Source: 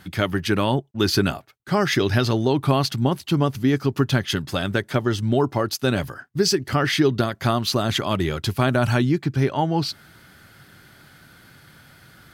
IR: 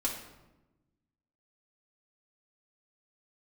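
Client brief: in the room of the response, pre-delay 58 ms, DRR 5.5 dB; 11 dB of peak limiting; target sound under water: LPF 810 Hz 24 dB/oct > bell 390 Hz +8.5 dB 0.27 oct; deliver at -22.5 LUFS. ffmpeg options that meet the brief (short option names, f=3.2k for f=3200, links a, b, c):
-filter_complex "[0:a]alimiter=limit=-17dB:level=0:latency=1,asplit=2[a][b];[1:a]atrim=start_sample=2205,adelay=58[c];[b][c]afir=irnorm=-1:irlink=0,volume=-10dB[d];[a][d]amix=inputs=2:normalize=0,lowpass=f=810:w=0.5412,lowpass=f=810:w=1.3066,equalizer=f=390:t=o:w=0.27:g=8.5,volume=3dB"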